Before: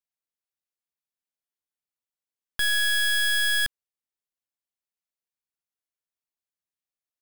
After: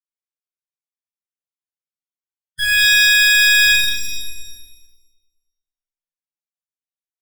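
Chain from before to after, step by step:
spectral peaks only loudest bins 32
Chebyshev low-pass filter 10,000 Hz, order 2
leveller curve on the samples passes 3
reverb with rising layers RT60 1.1 s, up +7 semitones, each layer −2 dB, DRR −9 dB
level −2 dB

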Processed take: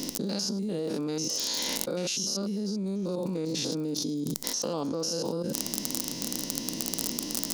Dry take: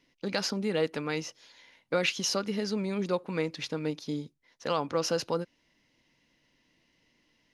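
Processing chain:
spectrum averaged block by block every 100 ms
surface crackle 37 per second −45 dBFS
drawn EQ curve 120 Hz 0 dB, 210 Hz +13 dB, 1,200 Hz 0 dB, 2,100 Hz −8 dB, 5,600 Hz +14 dB
envelope flattener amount 100%
level −12 dB

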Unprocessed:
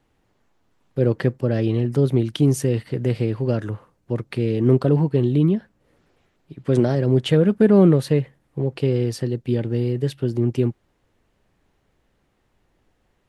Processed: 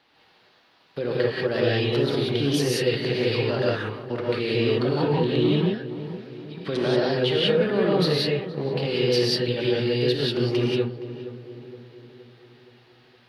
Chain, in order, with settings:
high-pass filter 1,000 Hz 6 dB per octave
high shelf with overshoot 5,700 Hz −10 dB, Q 3
in parallel at −1 dB: downward compressor, threshold −38 dBFS, peak gain reduction 17.5 dB
on the sum: brickwall limiter −22 dBFS, peak gain reduction 13.5 dB
soft clipping −15.5 dBFS, distortion −34 dB
on a send: feedback echo with a low-pass in the loop 469 ms, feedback 53%, low-pass 1,400 Hz, level −12.5 dB
on the sum: reverb whose tail is shaped and stops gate 210 ms rising, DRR −4.5 dB
level +3.5 dB

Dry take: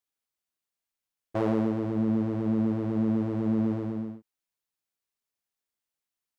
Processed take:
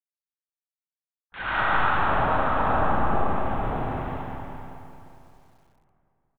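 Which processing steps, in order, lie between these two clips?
0:01.38–0:01.87: converter with a step at zero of −38 dBFS
gate on every frequency bin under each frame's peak −25 dB weak
notch filter 530 Hz, Q 12
0:01.15–0:02.87: gain on a spectral selection 350–1,700 Hz +9 dB
linear-prediction vocoder at 8 kHz whisper
0:02.65–0:03.91: tilt shelving filter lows +8.5 dB
repeating echo 215 ms, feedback 46%, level −16.5 dB
convolution reverb RT60 2.9 s, pre-delay 45 ms, DRR −9.5 dB
feedback echo at a low word length 192 ms, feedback 55%, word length 10 bits, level −14 dB
level +7 dB

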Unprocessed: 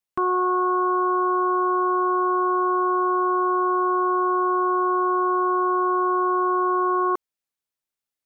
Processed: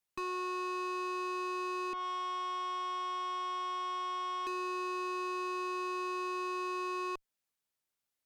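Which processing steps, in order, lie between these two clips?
0:01.93–0:04.47: drawn EQ curve 220 Hz 0 dB, 430 Hz −28 dB, 650 Hz −10 dB, 1,600 Hz −7 dB
downward compressor 16 to 1, threshold −24 dBFS, peak gain reduction 6.5 dB
tube saturation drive 36 dB, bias 0.3
level +1 dB

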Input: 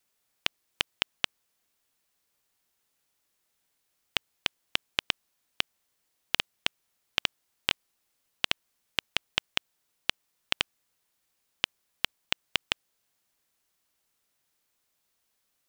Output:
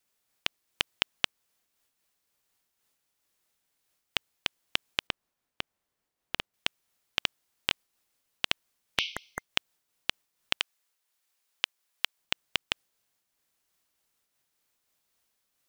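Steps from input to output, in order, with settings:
0:05.07–0:06.54: high-shelf EQ 2,100 Hz −10 dB
0:09.02–0:09.47: healed spectral selection 2,100–6,200 Hz both
0:10.57–0:12.18: high-pass filter 730 Hz 6 dB per octave
amplitude modulation by smooth noise, depth 55%
level +2 dB

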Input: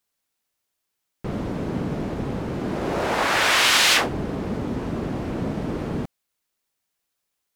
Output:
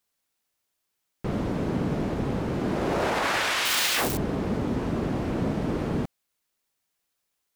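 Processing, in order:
0:03.65–0:04.17: spike at every zero crossing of −16 dBFS
brickwall limiter −16.5 dBFS, peak gain reduction 10.5 dB

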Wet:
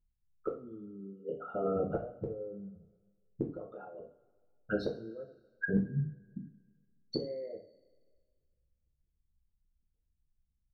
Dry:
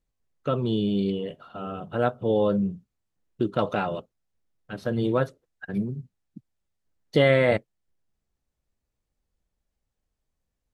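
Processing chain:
spectral envelope exaggerated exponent 3
gate with flip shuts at −22 dBFS, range −26 dB
coupled-rooms reverb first 0.38 s, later 1.7 s, from −21 dB, DRR −2 dB

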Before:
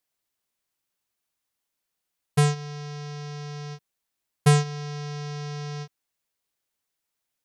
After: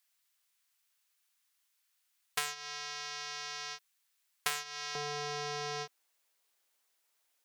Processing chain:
stylus tracing distortion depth 0.047 ms
high-pass filter 1,300 Hz 12 dB per octave, from 0:04.95 450 Hz
downward compressor 5 to 1, threshold −36 dBFS, peak gain reduction 13.5 dB
level +5.5 dB

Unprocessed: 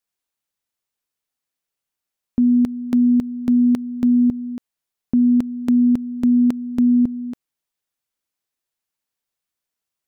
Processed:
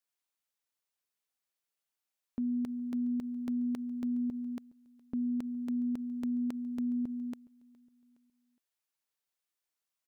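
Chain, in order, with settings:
low-shelf EQ 270 Hz −8.5 dB
brickwall limiter −24 dBFS, peak gain reduction 11 dB
repeating echo 415 ms, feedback 40%, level −23 dB
level −4.5 dB

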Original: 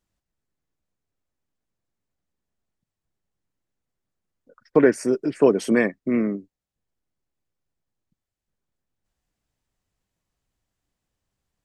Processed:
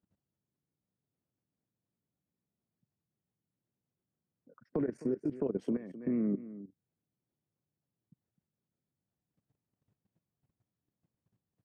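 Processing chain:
brickwall limiter −13 dBFS, peak gain reduction 9 dB
high-pass filter 120 Hz 24 dB per octave
single-tap delay 257 ms −12.5 dB
downward compressor 2.5 to 1, threshold −42 dBFS, peak gain reduction 16 dB
spectral tilt −4.5 dB per octave
output level in coarse steps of 15 dB

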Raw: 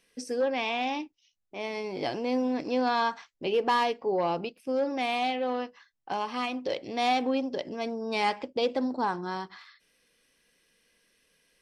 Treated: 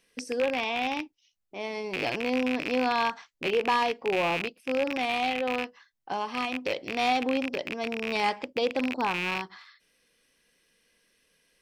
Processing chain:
loose part that buzzes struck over −42 dBFS, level −19 dBFS

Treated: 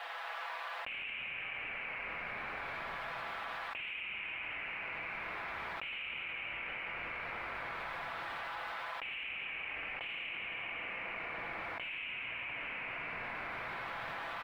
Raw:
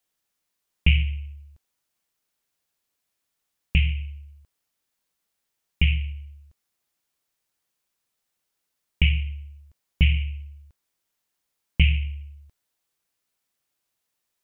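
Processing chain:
high-pass filter 660 Hz 24 dB per octave
comb filter 6 ms, depth 60%
brickwall limiter −24 dBFS, peak gain reduction 13.5 dB
mid-hump overdrive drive 19 dB, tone 1,600 Hz, clips at −24 dBFS
high-frequency loss of the air 490 metres
convolution reverb RT60 4.8 s, pre-delay 3 ms, DRR 0.5 dB
envelope flattener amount 100%
level −2 dB

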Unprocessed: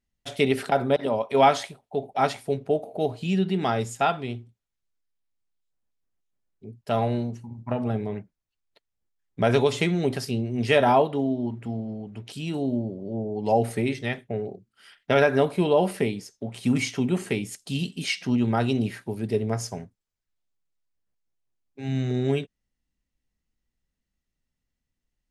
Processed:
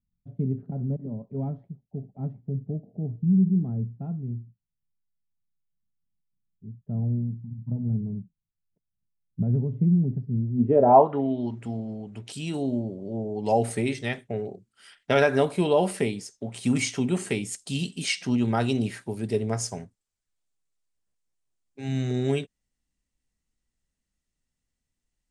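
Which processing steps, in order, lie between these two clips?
low-pass filter sweep 170 Hz → 8,600 Hz, 0:10.52–0:11.64
level −1 dB

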